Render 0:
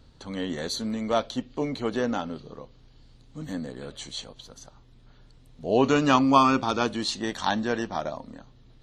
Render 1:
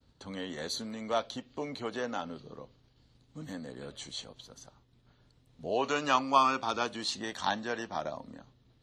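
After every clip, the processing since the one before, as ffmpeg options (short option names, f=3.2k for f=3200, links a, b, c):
-filter_complex "[0:a]agate=range=-33dB:threshold=-49dB:ratio=3:detection=peak,highpass=54,acrossover=split=480|4700[a][b][c];[a]acompressor=threshold=-35dB:ratio=6[d];[d][b][c]amix=inputs=3:normalize=0,volume=-4.5dB"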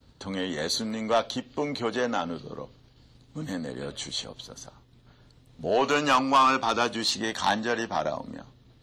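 -af "asoftclip=type=tanh:threshold=-22.5dB,volume=8.5dB"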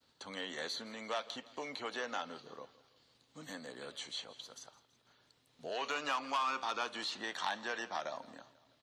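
-filter_complex "[0:a]acrossover=split=1500|3600[a][b][c];[a]acompressor=threshold=-27dB:ratio=4[d];[b]acompressor=threshold=-34dB:ratio=4[e];[c]acompressor=threshold=-46dB:ratio=4[f];[d][e][f]amix=inputs=3:normalize=0,highpass=f=940:p=1,aecho=1:1:165|330|495|660:0.106|0.0551|0.0286|0.0149,volume=-5dB"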